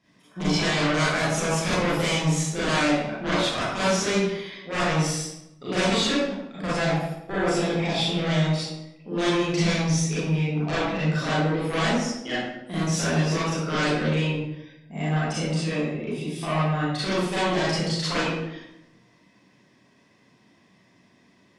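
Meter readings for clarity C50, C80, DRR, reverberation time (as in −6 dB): −2.5 dB, 1.5 dB, −10.5 dB, 0.85 s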